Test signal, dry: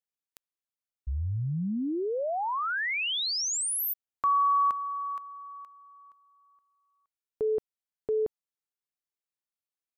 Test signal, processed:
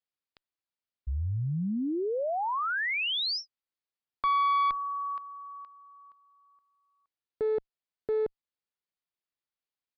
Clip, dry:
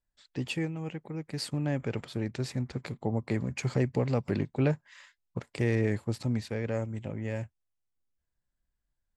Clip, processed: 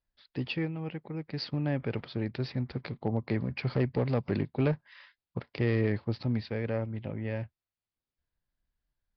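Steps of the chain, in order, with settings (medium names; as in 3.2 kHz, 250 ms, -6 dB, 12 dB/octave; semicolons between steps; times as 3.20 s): one-sided clip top -25.5 dBFS, bottom -17.5 dBFS; resampled via 11.025 kHz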